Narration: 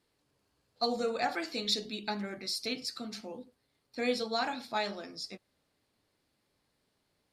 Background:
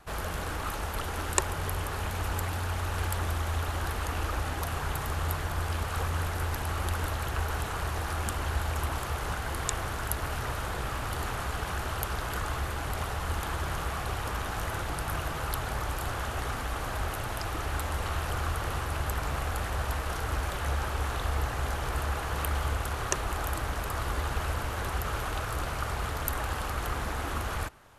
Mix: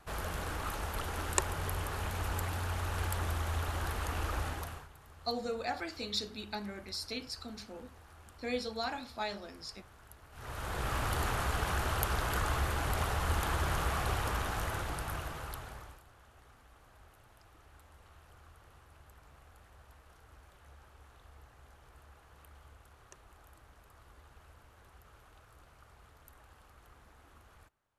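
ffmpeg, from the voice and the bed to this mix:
ffmpeg -i stem1.wav -i stem2.wav -filter_complex "[0:a]adelay=4450,volume=-4.5dB[link_01];[1:a]volume=20dB,afade=type=out:start_time=4.44:duration=0.44:silence=0.1,afade=type=in:start_time=10.32:duration=0.66:silence=0.0630957,afade=type=out:start_time=14.1:duration=1.93:silence=0.0446684[link_02];[link_01][link_02]amix=inputs=2:normalize=0" out.wav

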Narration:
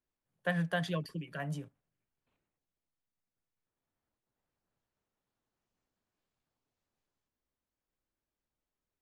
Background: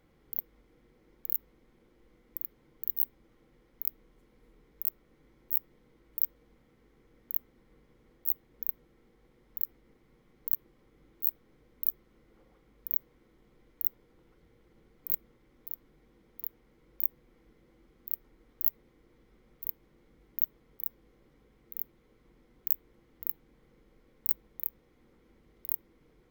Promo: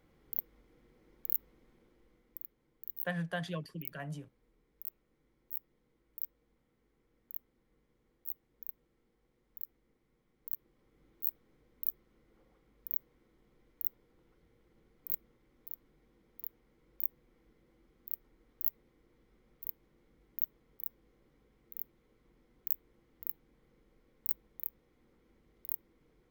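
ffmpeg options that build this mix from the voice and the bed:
ffmpeg -i stem1.wav -i stem2.wav -filter_complex "[0:a]adelay=2600,volume=-4dB[link_01];[1:a]volume=4.5dB,afade=type=out:start_time=1.69:duration=0.86:silence=0.334965,afade=type=in:start_time=10.37:duration=0.69:silence=0.501187[link_02];[link_01][link_02]amix=inputs=2:normalize=0" out.wav

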